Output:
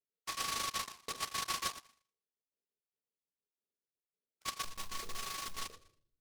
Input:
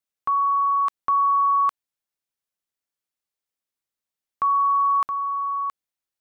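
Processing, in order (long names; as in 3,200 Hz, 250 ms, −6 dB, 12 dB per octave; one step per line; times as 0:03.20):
time-frequency cells dropped at random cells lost 36%
resonant band-pass 450 Hz, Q 3.4
in parallel at −2 dB: brickwall limiter −39 dBFS, peak gain reduction 9.5 dB
on the sum: spectral tilt −4.5 dB per octave
0:04.62–0:05.60: comparator with hysteresis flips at −56.5 dBFS
convolution reverb RT60 0.55 s, pre-delay 5 ms, DRR 2.5 dB
flanger 1.5 Hz, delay 6.7 ms, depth 7.6 ms, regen −42%
short delay modulated by noise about 3,700 Hz, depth 0.15 ms
level −1.5 dB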